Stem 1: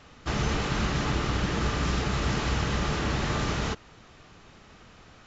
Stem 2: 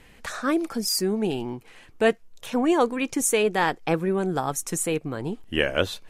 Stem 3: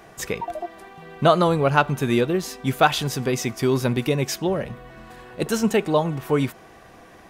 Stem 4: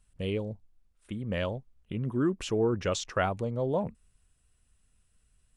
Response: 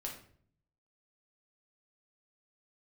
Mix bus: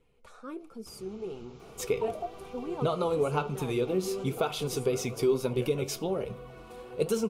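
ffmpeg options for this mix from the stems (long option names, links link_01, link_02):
-filter_complex "[0:a]acompressor=threshold=-29dB:ratio=6,adelay=600,volume=-17.5dB[link_01];[1:a]highshelf=frequency=2500:gain=-8.5,volume=-9dB,asplit=2[link_02][link_03];[link_03]volume=-20.5dB[link_04];[2:a]adelay=1600,volume=2dB,asplit=2[link_05][link_06];[link_06]volume=-20dB[link_07];[3:a]adelay=1750,volume=-18dB[link_08];[link_02][link_05]amix=inputs=2:normalize=0,flanger=delay=0.5:depth=3.7:regen=-44:speed=1.4:shape=triangular,acompressor=threshold=-25dB:ratio=6,volume=0dB[link_09];[4:a]atrim=start_sample=2205[link_10];[link_04][link_07]amix=inputs=2:normalize=0[link_11];[link_11][link_10]afir=irnorm=-1:irlink=0[link_12];[link_01][link_08][link_09][link_12]amix=inputs=4:normalize=0,superequalizer=7b=2.51:11b=0.282:16b=1.41,flanger=delay=4.3:depth=6.8:regen=73:speed=1.1:shape=triangular"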